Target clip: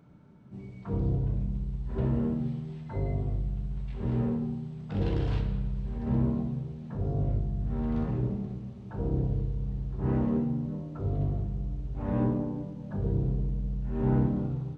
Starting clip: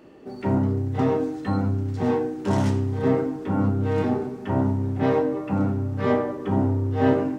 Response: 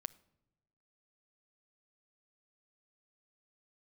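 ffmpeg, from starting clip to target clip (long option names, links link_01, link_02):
-af "asetrate=22050,aresample=44100,volume=-6.5dB"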